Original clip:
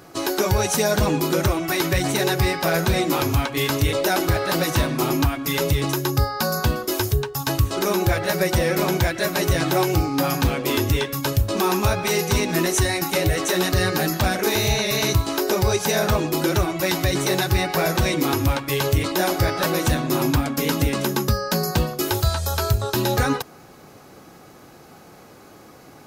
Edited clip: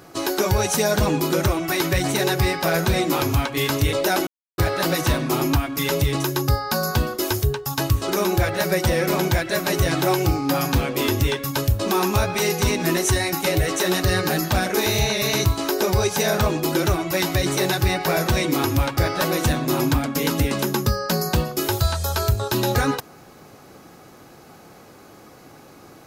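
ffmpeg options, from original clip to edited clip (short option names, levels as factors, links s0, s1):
-filter_complex "[0:a]asplit=3[s0][s1][s2];[s0]atrim=end=4.27,asetpts=PTS-STARTPTS,afade=t=out:st=4.266:d=0.004:c=hsin,apad=pad_dur=0.31[s3];[s1]atrim=start=4.27:end=18.662,asetpts=PTS-STARTPTS,afade=t=in:d=0.004:c=hsin[s4];[s2]atrim=start=19.388[s5];[s3][s4]concat=n=2:v=0:a=1[s6];[s6][s5]acrossfade=d=0.004:c1=hsin:c2=hsin"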